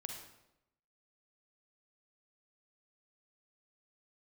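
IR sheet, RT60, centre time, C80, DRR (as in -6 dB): 0.85 s, 37 ms, 6.5 dB, 2.5 dB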